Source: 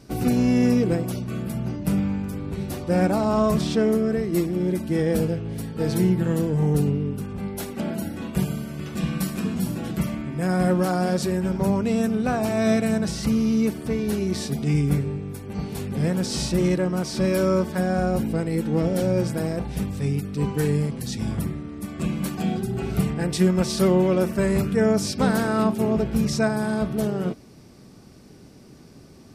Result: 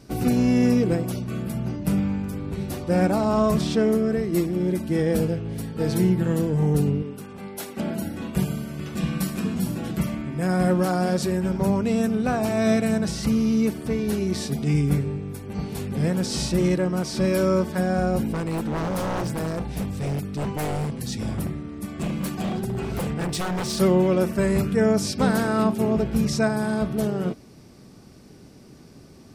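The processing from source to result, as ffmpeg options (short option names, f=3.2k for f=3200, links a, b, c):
-filter_complex "[0:a]asettb=1/sr,asplit=3[a][b][c];[a]atrim=end=7.024[d];[b]atrim=start=7.02:end=7.77,asetpts=PTS-STARTPTS,afade=t=in:d=0.004:c=qsin,afade=t=out:st=0.746:d=0.004:c=qsin,highpass=f=430:p=1[e];[c]atrim=start=7.766[f];[d][e]acrossfade=d=0.004:c1=hsin:c2=qsin[g];[g][f]acrossfade=d=0.004:c1=qsin:c2=hsin,asettb=1/sr,asplit=3[h][i][j];[h]atrim=end=18.324[k];[i]atrim=start=18.32:end=23.8,asetpts=PTS-STARTPTS,afade=t=in:d=0.004:c=qsin,afade=t=out:st=5.476:d=0.004:c=qsin,aeval=exprs='0.0891*(abs(mod(val(0)/0.0891+3,4)-2)-1)':c=same[l];[j]atrim=start=23.796[m];[k][l]acrossfade=d=0.004:c1=hsin:c2=qsin[n];[n][m]acrossfade=d=0.004:c1=qsin:c2=hsin"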